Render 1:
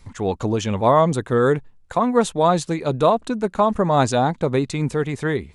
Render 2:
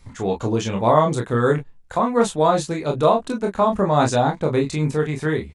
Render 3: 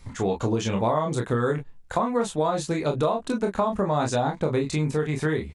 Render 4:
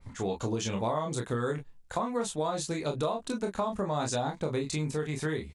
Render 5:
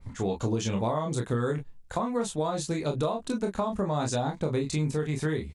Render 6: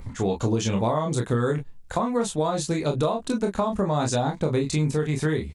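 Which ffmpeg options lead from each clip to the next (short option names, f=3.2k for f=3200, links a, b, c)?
-af "aecho=1:1:26|41:0.668|0.335,volume=-2dB"
-af "acompressor=threshold=-22dB:ratio=6,volume=1.5dB"
-af "adynamicequalizer=threshold=0.00562:dfrequency=3100:dqfactor=0.7:tfrequency=3100:tqfactor=0.7:attack=5:release=100:ratio=0.375:range=3.5:mode=boostabove:tftype=highshelf,volume=-7dB"
-af "lowshelf=f=360:g=5.5"
-af "acompressor=mode=upward:threshold=-39dB:ratio=2.5,volume=4.5dB"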